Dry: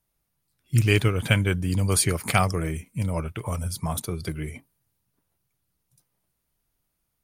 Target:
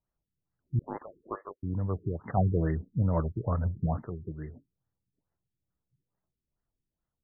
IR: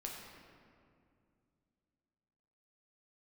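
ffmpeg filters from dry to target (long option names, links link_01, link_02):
-filter_complex "[0:a]asettb=1/sr,asplit=3[link_01][link_02][link_03];[link_01]atrim=end=0.794[link_04];[link_02]atrim=start=0.79:end=1.63,asetpts=PTS-STARTPTS,afade=type=in:duration=0.004:curve=qsin,afade=type=out:start_time=0.836:duration=0.004:curve=qsin,lowpass=frequency=2300:width_type=q:width=0.5098,lowpass=frequency=2300:width_type=q:width=0.6013,lowpass=frequency=2300:width_type=q:width=0.9,lowpass=frequency=2300:width_type=q:width=2.563,afreqshift=-2700[link_05];[link_03]atrim=start=1.626[link_06];[link_04][link_05]acrossfade=duration=0.004:curve1=hsin:curve2=qsin[link_07];[link_07][link_06]acrossfade=duration=0.004:curve1=qsin:curve2=hsin,asettb=1/sr,asplit=3[link_08][link_09][link_10];[link_08]atrim=end=2.374[link_11];[link_09]atrim=start=2.37:end=4.08,asetpts=PTS-STARTPTS,afade=type=in:duration=0.004:curve=qsin,afade=type=out:start_time=1.706:duration=0.004:curve=qsin,aeval=exprs='0.708*sin(PI/2*1.58*val(0)/0.708)':channel_layout=same[link_12];[link_10]atrim=start=4.076[link_13];[link_11][link_12]acrossfade=duration=0.004:curve1=hsin:curve2=qsin[link_14];[link_14][link_13]acrossfade=duration=0.004:curve1=qsin:curve2=hsin,afftfilt=real='re*lt(b*sr/1024,410*pow(2100/410,0.5+0.5*sin(2*PI*2.3*pts/sr)))':imag='im*lt(b*sr/1024,410*pow(2100/410,0.5+0.5*sin(2*PI*2.3*pts/sr)))':win_size=1024:overlap=0.75,volume=-7.5dB"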